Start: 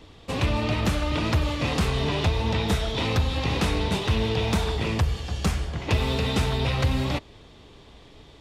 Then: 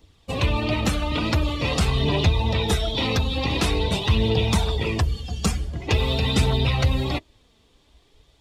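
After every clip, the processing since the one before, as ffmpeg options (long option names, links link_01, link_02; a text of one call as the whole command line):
ffmpeg -i in.wav -af "crystalizer=i=2:c=0,afftdn=noise_reduction=14:noise_floor=-31,aphaser=in_gain=1:out_gain=1:delay=4.6:decay=0.33:speed=0.46:type=triangular,volume=1.5dB" out.wav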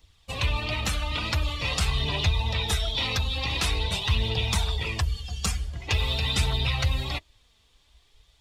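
ffmpeg -i in.wav -af "equalizer=frequency=290:width=0.48:gain=-14" out.wav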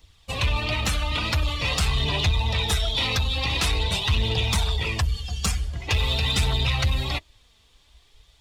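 ffmpeg -i in.wav -af "asoftclip=type=tanh:threshold=-18dB,volume=4dB" out.wav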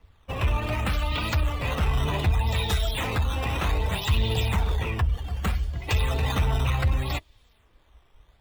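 ffmpeg -i in.wav -filter_complex "[0:a]highshelf=frequency=3000:gain=-7.5,acrossover=split=310|3000[link_01][link_02][link_03];[link_03]acrusher=samples=11:mix=1:aa=0.000001:lfo=1:lforange=17.6:lforate=0.65[link_04];[link_01][link_02][link_04]amix=inputs=3:normalize=0" out.wav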